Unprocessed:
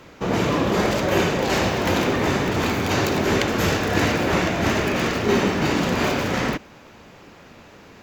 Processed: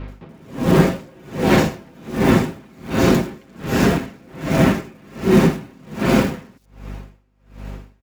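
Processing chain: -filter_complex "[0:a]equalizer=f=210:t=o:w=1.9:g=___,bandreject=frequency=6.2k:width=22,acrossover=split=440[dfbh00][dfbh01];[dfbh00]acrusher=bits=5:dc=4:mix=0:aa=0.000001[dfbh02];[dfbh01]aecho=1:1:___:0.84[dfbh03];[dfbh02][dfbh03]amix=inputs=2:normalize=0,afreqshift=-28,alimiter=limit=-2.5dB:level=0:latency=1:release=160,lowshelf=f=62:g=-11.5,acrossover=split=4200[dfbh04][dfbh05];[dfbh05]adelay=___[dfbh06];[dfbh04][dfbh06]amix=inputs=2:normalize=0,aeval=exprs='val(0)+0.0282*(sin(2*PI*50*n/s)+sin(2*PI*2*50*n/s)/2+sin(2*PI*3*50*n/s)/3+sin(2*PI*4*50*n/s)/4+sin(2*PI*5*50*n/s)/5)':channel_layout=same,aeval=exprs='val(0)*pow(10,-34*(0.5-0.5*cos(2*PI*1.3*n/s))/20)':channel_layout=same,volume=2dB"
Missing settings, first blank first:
13.5, 7.3, 80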